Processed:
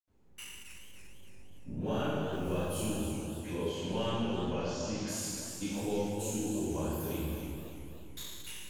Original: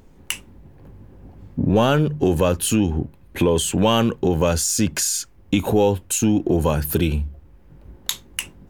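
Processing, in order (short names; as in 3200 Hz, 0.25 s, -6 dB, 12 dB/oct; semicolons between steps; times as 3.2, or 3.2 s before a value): 2.09–2.56 modulation noise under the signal 30 dB; 3.39–5 steep low-pass 6000 Hz 36 dB/oct; reverb RT60 1.8 s, pre-delay 77 ms; warbling echo 0.288 s, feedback 55%, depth 153 cents, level -8.5 dB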